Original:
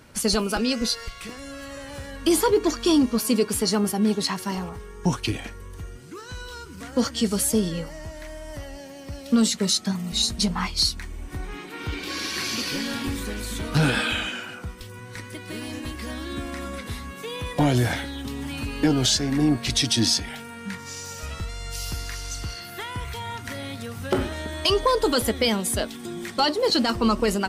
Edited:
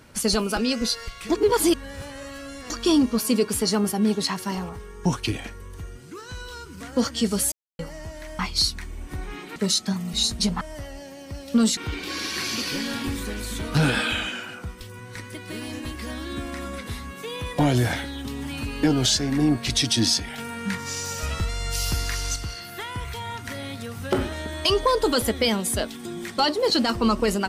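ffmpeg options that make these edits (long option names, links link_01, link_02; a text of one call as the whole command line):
ffmpeg -i in.wav -filter_complex "[0:a]asplit=11[link_01][link_02][link_03][link_04][link_05][link_06][link_07][link_08][link_09][link_10][link_11];[link_01]atrim=end=1.302[link_12];[link_02]atrim=start=1.298:end=2.702,asetpts=PTS-STARTPTS,areverse[link_13];[link_03]atrim=start=2.698:end=7.52,asetpts=PTS-STARTPTS,afade=type=out:start_time=4.818:duration=0.004:curve=hsin[link_14];[link_04]atrim=start=7.52:end=7.79,asetpts=PTS-STARTPTS,volume=0[link_15];[link_05]atrim=start=7.79:end=8.392,asetpts=PTS-STARTPTS,afade=type=in:duration=0.004:curve=hsin[link_16];[link_06]atrim=start=10.598:end=11.772[link_17];[link_07]atrim=start=9.548:end=10.602[link_18];[link_08]atrim=start=8.388:end=9.552[link_19];[link_09]atrim=start=11.768:end=20.382[link_20];[link_10]atrim=start=20.378:end=22.362,asetpts=PTS-STARTPTS,volume=5.5dB[link_21];[link_11]atrim=start=22.358[link_22];[link_12][link_13]acrossfade=duration=0.004:curve1=hsin:curve2=hsin[link_23];[link_14][link_15][link_16]concat=n=3:v=0:a=1[link_24];[link_23][link_24]acrossfade=duration=0.004:curve1=hsin:curve2=hsin[link_25];[link_25][link_17]acrossfade=duration=0.004:curve1=hsin:curve2=hsin[link_26];[link_26][link_18]acrossfade=duration=0.004:curve1=hsin:curve2=hsin[link_27];[link_27][link_19]acrossfade=duration=0.004:curve1=hsin:curve2=hsin[link_28];[link_28][link_20]acrossfade=duration=0.004:curve1=hsin:curve2=hsin[link_29];[link_29][link_21]acrossfade=duration=0.004:curve1=hsin:curve2=hsin[link_30];[link_30][link_22]acrossfade=duration=0.004:curve1=hsin:curve2=hsin" out.wav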